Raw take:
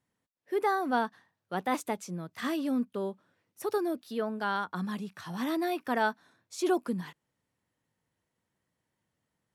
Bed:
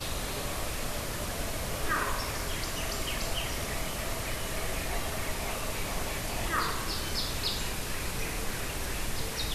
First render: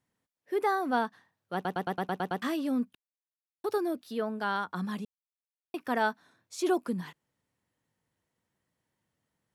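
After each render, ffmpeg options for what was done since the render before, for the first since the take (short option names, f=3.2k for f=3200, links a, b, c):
-filter_complex "[0:a]asplit=13[a][b][c][d][e][f][g][h][i][j][k][l][m];[a]atrim=end=1.652[n];[b]atrim=start=1.538:end=1.652[o];[c]atrim=start=1.538:end=1.652[p];[d]atrim=start=1.538:end=1.652[q];[e]atrim=start=1.538:end=1.652[r];[f]atrim=start=1.538:end=1.652[s];[g]atrim=start=1.538:end=1.652[t];[h]atrim=start=1.538:end=1.652[u];[i]atrim=start=2.418:end=2.95,asetpts=PTS-STARTPTS,afade=t=out:st=0.528:d=0.004:c=hsin[v];[j]atrim=start=2.95:end=3.64,asetpts=PTS-STARTPTS,volume=0[w];[k]atrim=start=3.64:end=5.05,asetpts=PTS-STARTPTS,afade=t=in:d=0.004:c=hsin,afade=t=out:st=1.406:d=0.004:c=hsin[x];[l]atrim=start=5.05:end=5.74,asetpts=PTS-STARTPTS,volume=0[y];[m]atrim=start=5.74,asetpts=PTS-STARTPTS,afade=t=in:d=0.004:c=hsin[z];[n][o]acrossfade=d=0.004:c1=hsin:c2=hsin[aa];[aa][p]acrossfade=d=0.004:c1=hsin:c2=hsin[ab];[ab][q]acrossfade=d=0.004:c1=hsin:c2=hsin[ac];[ac][r]acrossfade=d=0.004:c1=hsin:c2=hsin[ad];[ad][s]acrossfade=d=0.004:c1=hsin:c2=hsin[ae];[ae][t]acrossfade=d=0.004:c1=hsin:c2=hsin[af];[af][u]acrossfade=d=0.004:c1=hsin:c2=hsin[ag];[v][w][x][y][z]concat=n=5:v=0:a=1[ah];[ag][ah]acrossfade=d=0.004:c1=hsin:c2=hsin"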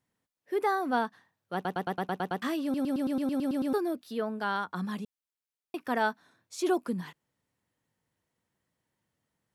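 -filter_complex "[0:a]asplit=11[a][b][c][d][e][f][g][h][i][j][k];[a]atrim=end=2.742[l];[b]atrim=start=2.628:end=2.742[m];[c]atrim=start=2.628:end=2.742[n];[d]atrim=start=2.628:end=2.742[o];[e]atrim=start=2.628:end=2.742[p];[f]atrim=start=2.628:end=2.742[q];[g]atrim=start=2.628:end=2.742[r];[h]atrim=start=2.628:end=2.742[s];[i]atrim=start=2.628:end=2.742[t];[j]atrim=start=2.628:end=2.742[u];[k]atrim=start=3.728[v];[l][m]acrossfade=d=0.004:c1=hsin:c2=hsin[w];[w][n]acrossfade=d=0.004:c1=hsin:c2=hsin[x];[x][o]acrossfade=d=0.004:c1=hsin:c2=hsin[y];[y][p]acrossfade=d=0.004:c1=hsin:c2=hsin[z];[z][q]acrossfade=d=0.004:c1=hsin:c2=hsin[aa];[aa][r]acrossfade=d=0.004:c1=hsin:c2=hsin[ab];[ab][s]acrossfade=d=0.004:c1=hsin:c2=hsin[ac];[ac][t]acrossfade=d=0.004:c1=hsin:c2=hsin[ad];[ad][u]acrossfade=d=0.004:c1=hsin:c2=hsin[ae];[ae][v]acrossfade=d=0.004:c1=hsin:c2=hsin"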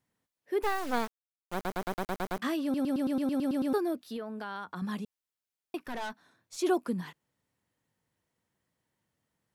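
-filter_complex "[0:a]asplit=3[a][b][c];[a]afade=t=out:st=0.62:d=0.02[d];[b]acrusher=bits=4:dc=4:mix=0:aa=0.000001,afade=t=in:st=0.62:d=0.02,afade=t=out:st=2.38:d=0.02[e];[c]afade=t=in:st=2.38:d=0.02[f];[d][e][f]amix=inputs=3:normalize=0,asettb=1/sr,asplit=3[g][h][i];[g]atrim=end=4.164[j];[h]atrim=start=4.16:end=4.82,asetpts=PTS-STARTPTS,afade=t=in:d=0.004:c=qsin,afade=t=out:st=0.656:d=0.004:c=qsin,acompressor=threshold=-35dB:ratio=4:attack=3.2:release=140:knee=1:detection=peak[k];[i]atrim=start=4.816[l];[j][k]acrossfade=d=0.004:c1=hsin:c2=qsin[m];[m][l]acrossfade=d=0.004:c1=qsin:c2=hsin,asettb=1/sr,asplit=3[n][o][p];[n]atrim=end=5.784[q];[o]atrim=start=5.78:end=6.57,asetpts=PTS-STARTPTS,afade=t=in:d=0.004:c=qsin,afade=t=out:st=0.786:d=0.004:c=qsin,aeval=exprs='(tanh(50.1*val(0)+0.35)-tanh(0.35))/50.1':c=same[r];[p]atrim=start=6.566[s];[q][r]acrossfade=d=0.004:c1=hsin:c2=qsin[t];[t][s]acrossfade=d=0.004:c1=qsin:c2=hsin"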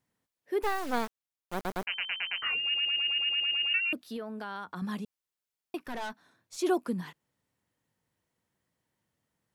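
-filter_complex "[0:a]asettb=1/sr,asplit=3[a][b][c];[a]atrim=end=1.854[d];[b]atrim=start=1.85:end=3.93,asetpts=PTS-STARTPTS,afade=t=in:d=0.004:c=qsin,afade=t=out:st=2.076:d=0.004:c=qsin,lowpass=f=2.6k:t=q:w=0.5098,lowpass=f=2.6k:t=q:w=0.6013,lowpass=f=2.6k:t=q:w=0.9,lowpass=f=2.6k:t=q:w=2.563,afreqshift=-3100[e];[c]atrim=start=3.926[f];[d][e]acrossfade=d=0.004:c1=hsin:c2=qsin[g];[g][f]acrossfade=d=0.004:c1=qsin:c2=hsin"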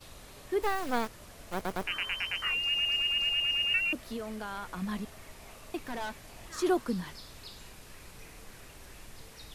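-filter_complex "[1:a]volume=-16dB[a];[0:a][a]amix=inputs=2:normalize=0"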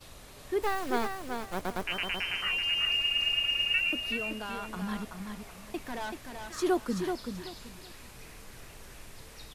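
-af "aecho=1:1:381|762|1143:0.501|0.12|0.0289"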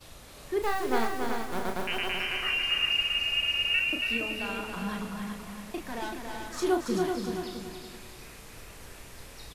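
-filter_complex "[0:a]asplit=2[a][b];[b]adelay=35,volume=-6dB[c];[a][c]amix=inputs=2:normalize=0,aecho=1:1:279|558|837|1116:0.562|0.18|0.0576|0.0184"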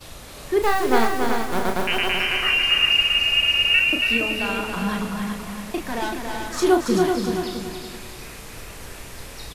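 -af "volume=9dB"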